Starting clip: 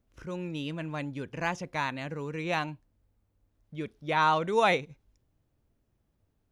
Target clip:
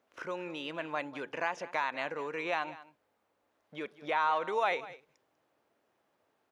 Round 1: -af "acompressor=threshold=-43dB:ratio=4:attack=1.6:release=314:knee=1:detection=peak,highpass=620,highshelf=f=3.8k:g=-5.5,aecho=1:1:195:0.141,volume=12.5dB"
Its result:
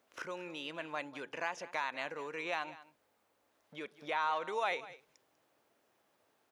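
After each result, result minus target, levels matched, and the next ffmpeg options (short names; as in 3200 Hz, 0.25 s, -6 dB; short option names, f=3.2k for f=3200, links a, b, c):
compressor: peak gain reduction +5 dB; 4000 Hz band +3.0 dB
-af "acompressor=threshold=-36dB:ratio=4:attack=1.6:release=314:knee=1:detection=peak,highpass=620,highshelf=f=3.8k:g=-5.5,aecho=1:1:195:0.141,volume=12.5dB"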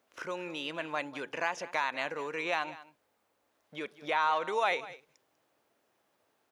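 4000 Hz band +3.0 dB
-af "acompressor=threshold=-36dB:ratio=4:attack=1.6:release=314:knee=1:detection=peak,highpass=620,highshelf=f=3.8k:g=-14.5,aecho=1:1:195:0.141,volume=12.5dB"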